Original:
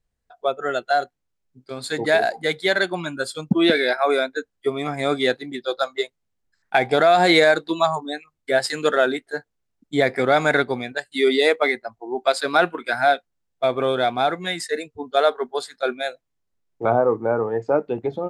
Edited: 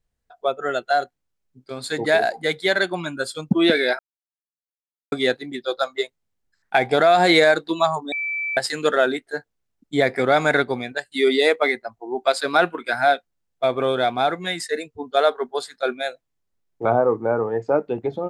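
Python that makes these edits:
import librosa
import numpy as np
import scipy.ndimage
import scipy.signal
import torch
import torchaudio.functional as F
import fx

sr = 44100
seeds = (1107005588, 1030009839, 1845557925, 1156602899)

y = fx.edit(x, sr, fx.silence(start_s=3.99, length_s=1.13),
    fx.bleep(start_s=8.12, length_s=0.45, hz=2320.0, db=-23.0), tone=tone)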